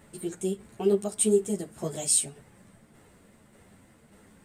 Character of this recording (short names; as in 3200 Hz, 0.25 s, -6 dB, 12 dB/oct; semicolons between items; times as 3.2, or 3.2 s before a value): tremolo saw down 1.7 Hz, depth 40%; a shimmering, thickened sound